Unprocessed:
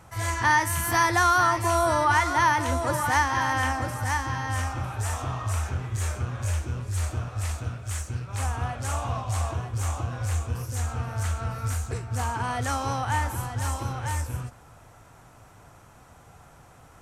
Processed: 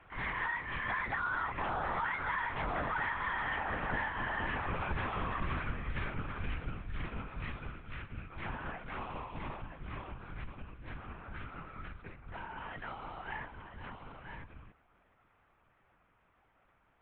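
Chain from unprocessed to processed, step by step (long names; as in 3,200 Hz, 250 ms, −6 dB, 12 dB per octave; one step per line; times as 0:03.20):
source passing by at 0:03.64, 11 m/s, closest 5.2 metres
parametric band 2,300 Hz +12.5 dB 2 octaves
downward compressor 16 to 1, threshold −35 dBFS, peak gain reduction 22 dB
soft clipping −32.5 dBFS, distortion −18 dB
high-frequency loss of the air 300 metres
linear-prediction vocoder at 8 kHz whisper
level +7 dB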